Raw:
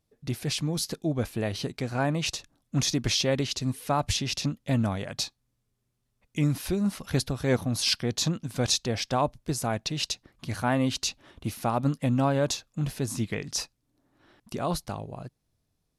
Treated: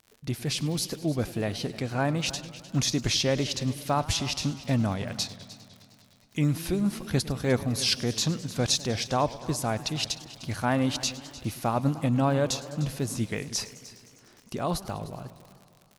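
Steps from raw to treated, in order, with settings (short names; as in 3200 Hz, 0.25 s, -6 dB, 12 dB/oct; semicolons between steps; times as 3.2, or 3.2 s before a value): crackle 92/s -40 dBFS; echo 0.303 s -18 dB; warbling echo 0.102 s, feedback 78%, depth 187 cents, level -18.5 dB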